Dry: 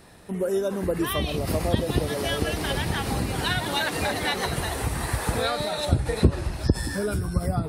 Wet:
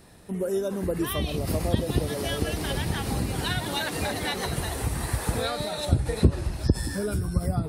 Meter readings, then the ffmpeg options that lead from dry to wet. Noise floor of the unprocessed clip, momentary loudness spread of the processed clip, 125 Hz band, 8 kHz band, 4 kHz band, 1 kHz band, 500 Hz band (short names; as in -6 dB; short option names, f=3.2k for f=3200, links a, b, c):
-33 dBFS, 4 LU, -0.5 dB, -0.5 dB, -3.0 dB, -4.0 dB, -2.5 dB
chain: -af "equalizer=f=1.4k:w=0.34:g=-4.5"